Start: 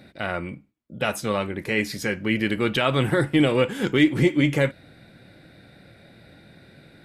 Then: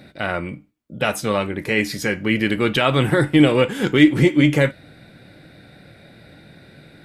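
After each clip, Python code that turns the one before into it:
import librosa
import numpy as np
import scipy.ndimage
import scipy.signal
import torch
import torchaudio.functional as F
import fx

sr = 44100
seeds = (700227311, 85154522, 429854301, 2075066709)

y = fx.comb_fb(x, sr, f0_hz=150.0, decay_s=0.24, harmonics='all', damping=0.0, mix_pct=40)
y = y * librosa.db_to_amplitude(7.5)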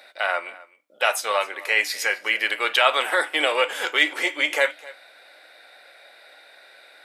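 y = scipy.signal.sosfilt(scipy.signal.butter(4, 620.0, 'highpass', fs=sr, output='sos'), x)
y = y + 10.0 ** (-20.5 / 20.0) * np.pad(y, (int(259 * sr / 1000.0), 0))[:len(y)]
y = y * librosa.db_to_amplitude(2.0)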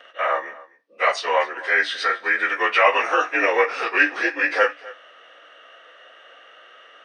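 y = fx.partial_stretch(x, sr, pct=90)
y = scipy.signal.savgol_filter(y, 15, 4, mode='constant')
y = y * librosa.db_to_amplitude(4.5)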